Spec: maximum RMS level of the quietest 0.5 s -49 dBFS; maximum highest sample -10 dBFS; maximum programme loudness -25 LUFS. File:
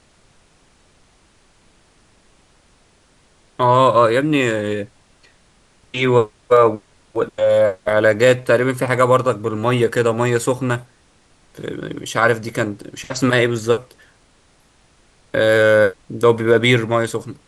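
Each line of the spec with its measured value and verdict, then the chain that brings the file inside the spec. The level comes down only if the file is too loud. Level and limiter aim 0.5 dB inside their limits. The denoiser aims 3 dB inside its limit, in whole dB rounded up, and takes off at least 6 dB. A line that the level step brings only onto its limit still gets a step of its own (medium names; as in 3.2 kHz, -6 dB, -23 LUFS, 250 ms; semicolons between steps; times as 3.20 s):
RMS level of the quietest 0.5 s -55 dBFS: pass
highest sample -2.0 dBFS: fail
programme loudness -17.0 LUFS: fail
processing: trim -8.5 dB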